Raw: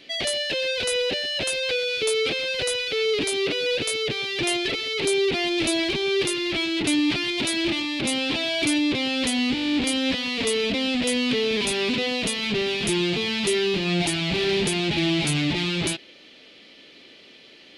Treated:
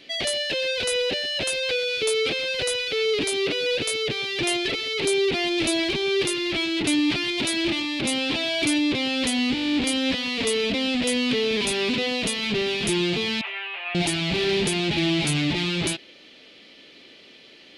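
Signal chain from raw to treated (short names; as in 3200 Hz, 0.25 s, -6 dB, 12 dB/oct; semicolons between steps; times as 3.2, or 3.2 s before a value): 13.41–13.95 elliptic band-pass 680–2700 Hz, stop band 60 dB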